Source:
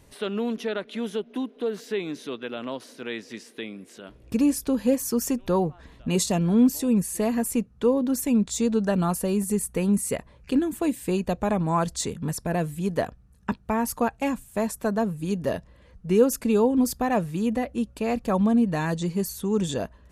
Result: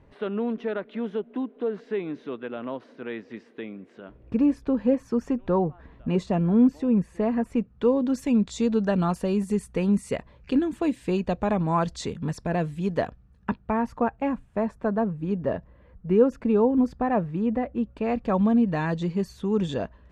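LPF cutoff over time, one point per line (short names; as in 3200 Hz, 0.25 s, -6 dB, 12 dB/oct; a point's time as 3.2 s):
7.45 s 1800 Hz
7.95 s 4200 Hz
13.07 s 4200 Hz
14.03 s 1700 Hz
17.72 s 1700 Hz
18.39 s 3300 Hz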